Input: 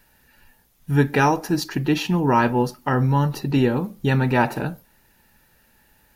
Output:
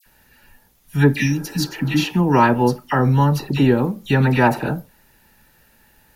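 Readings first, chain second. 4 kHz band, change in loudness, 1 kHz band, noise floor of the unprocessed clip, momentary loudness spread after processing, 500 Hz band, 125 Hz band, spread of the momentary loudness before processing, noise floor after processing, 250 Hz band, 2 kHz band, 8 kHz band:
+3.5 dB, +3.0 dB, +2.0 dB, -60 dBFS, 10 LU, +2.5 dB, +3.5 dB, 5 LU, -57 dBFS, +3.0 dB, +2.5 dB, +3.5 dB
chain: spectral replace 1.15–1.94 s, 310–1700 Hz both; phase dispersion lows, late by 62 ms, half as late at 1.9 kHz; trim +3.5 dB

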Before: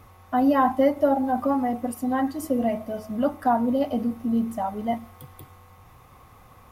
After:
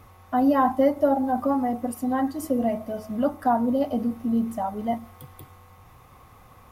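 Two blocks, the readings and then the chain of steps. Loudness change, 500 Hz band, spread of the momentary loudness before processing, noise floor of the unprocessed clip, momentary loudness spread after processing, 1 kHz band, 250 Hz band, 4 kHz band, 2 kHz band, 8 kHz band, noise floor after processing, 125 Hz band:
0.0 dB, 0.0 dB, 9 LU, -52 dBFS, 9 LU, -0.5 dB, 0.0 dB, no reading, -2.0 dB, 0.0 dB, -52 dBFS, 0.0 dB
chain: dynamic bell 2.5 kHz, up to -4 dB, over -43 dBFS, Q 1.1

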